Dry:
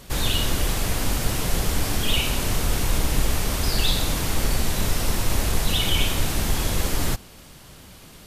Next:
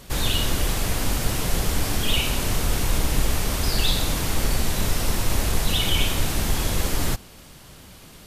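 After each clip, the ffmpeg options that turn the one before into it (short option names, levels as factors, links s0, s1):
-af anull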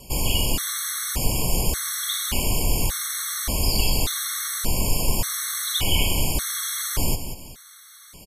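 -filter_complex "[0:a]acrossover=split=350|5000[s0][s1][s2];[s2]acontrast=88[s3];[s0][s1][s3]amix=inputs=3:normalize=0,aecho=1:1:186|372|558:0.316|0.098|0.0304,afftfilt=real='re*gt(sin(2*PI*0.86*pts/sr)*(1-2*mod(floor(b*sr/1024/1100),2)),0)':imag='im*gt(sin(2*PI*0.86*pts/sr)*(1-2*mod(floor(b*sr/1024/1100),2)),0)':win_size=1024:overlap=0.75"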